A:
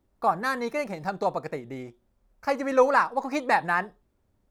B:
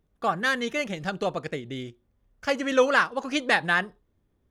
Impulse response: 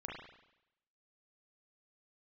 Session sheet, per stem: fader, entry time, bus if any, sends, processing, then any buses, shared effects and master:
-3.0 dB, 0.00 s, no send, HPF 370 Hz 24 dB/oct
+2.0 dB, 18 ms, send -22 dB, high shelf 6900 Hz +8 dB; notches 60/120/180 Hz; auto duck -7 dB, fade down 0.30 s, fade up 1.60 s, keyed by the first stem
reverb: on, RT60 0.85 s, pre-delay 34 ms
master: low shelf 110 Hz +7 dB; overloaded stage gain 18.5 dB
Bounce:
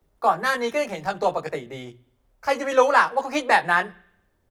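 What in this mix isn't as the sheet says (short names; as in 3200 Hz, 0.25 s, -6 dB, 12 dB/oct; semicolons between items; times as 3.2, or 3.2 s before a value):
stem A -3.0 dB -> +3.5 dB; master: missing overloaded stage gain 18.5 dB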